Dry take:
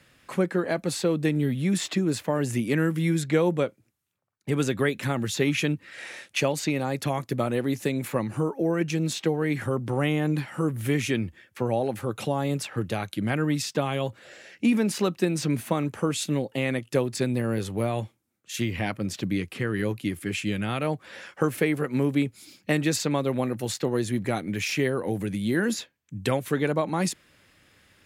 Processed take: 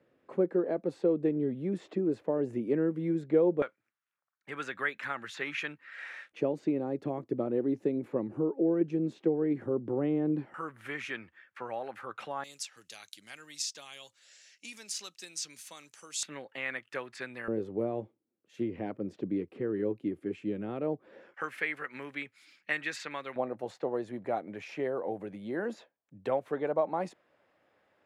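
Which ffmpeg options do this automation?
-af "asetnsamples=n=441:p=0,asendcmd='3.62 bandpass f 1500;6.32 bandpass f 360;10.54 bandpass f 1400;12.44 bandpass f 6100;16.23 bandpass f 1600;17.48 bandpass f 390;21.34 bandpass f 1800;23.36 bandpass f 670',bandpass=f=420:t=q:w=1.8:csg=0"

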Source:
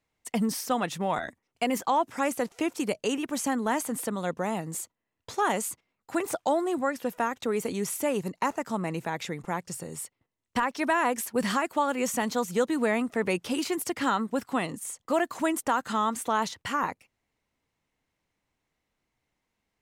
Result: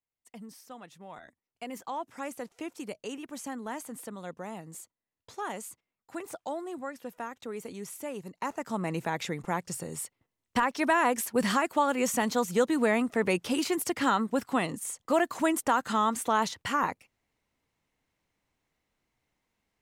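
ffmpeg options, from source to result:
-af "volume=0.5dB,afade=t=in:st=1.01:d=1.11:silence=0.354813,afade=t=in:st=8.28:d=0.73:silence=0.298538"

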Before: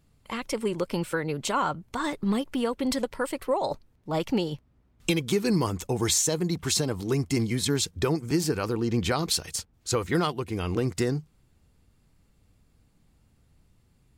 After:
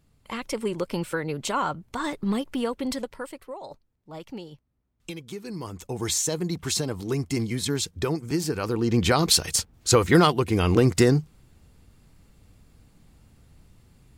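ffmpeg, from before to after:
-af "volume=20dB,afade=t=out:st=2.66:d=0.82:silence=0.251189,afade=t=in:st=5.53:d=0.72:silence=0.281838,afade=t=in:st=8.52:d=1:silence=0.354813"

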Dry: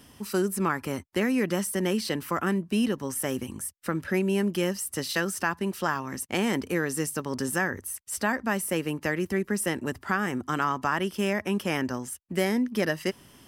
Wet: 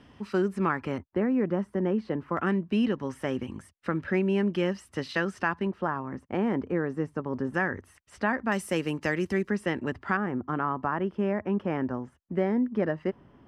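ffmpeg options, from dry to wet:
-af "asetnsamples=n=441:p=0,asendcmd='0.98 lowpass f 1100;2.37 lowpass f 2800;5.67 lowpass f 1200;7.54 lowpass f 2400;8.52 lowpass f 6400;9.5 lowpass f 2900;10.17 lowpass f 1200',lowpass=2.7k"

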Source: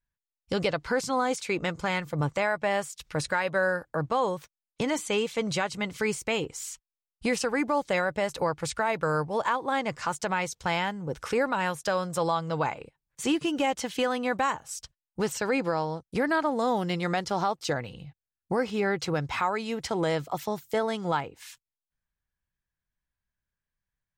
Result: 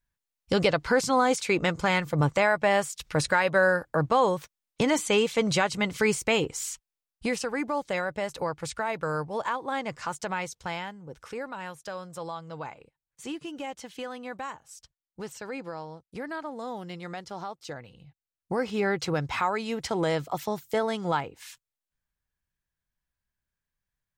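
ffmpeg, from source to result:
-af "volume=14.5dB,afade=t=out:st=6.61:d=0.8:silence=0.446684,afade=t=out:st=10.4:d=0.61:silence=0.446684,afade=t=in:st=17.96:d=0.85:silence=0.298538"

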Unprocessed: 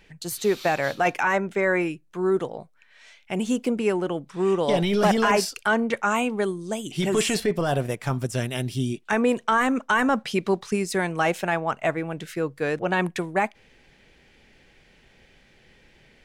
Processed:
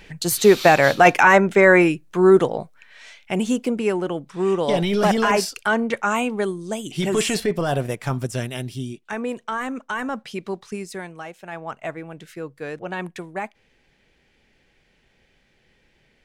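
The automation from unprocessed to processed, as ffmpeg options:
-af "volume=21dB,afade=t=out:st=2.56:d=1.07:silence=0.398107,afade=t=out:st=8.2:d=0.78:silence=0.421697,afade=t=out:st=10.81:d=0.56:silence=0.266073,afade=t=in:st=11.37:d=0.29:silence=0.266073"

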